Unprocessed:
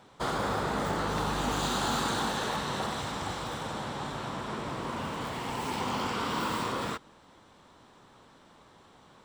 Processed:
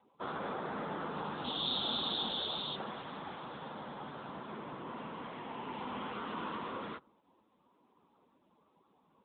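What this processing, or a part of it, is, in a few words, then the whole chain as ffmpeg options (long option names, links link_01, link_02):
mobile call with aggressive noise cancelling: -filter_complex "[0:a]asettb=1/sr,asplit=3[link_01][link_02][link_03];[link_01]atrim=end=1.444[link_04];[link_02]atrim=start=1.44:end=2.76,asetpts=PTS-STARTPTS,afade=type=in:duration=0.004:curve=qsin,afade=type=out:start_time=1.316:duration=0.004:curve=qsin,highshelf=frequency=2800:width_type=q:width=3:gain=10[link_05];[link_03]atrim=start=2.756[link_06];[link_04][link_05]acrossfade=duration=0.004:curve1=hsin:curve2=qsin[link_07];[link_07][link_06]acrossfade=duration=0.004:curve1=qsin:curve2=hsin,highpass=frequency=150:width=0.5412,highpass=frequency=150:width=1.3066,afftdn=noise_reduction=28:noise_floor=-52,volume=-7dB" -ar 8000 -c:a libopencore_amrnb -b:a 10200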